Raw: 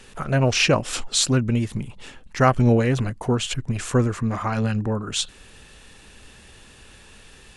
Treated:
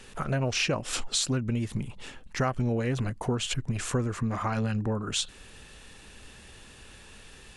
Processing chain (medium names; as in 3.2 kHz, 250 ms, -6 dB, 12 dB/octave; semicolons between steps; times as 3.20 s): compression 4:1, threshold -23 dBFS, peak gain reduction 10 dB; trim -2 dB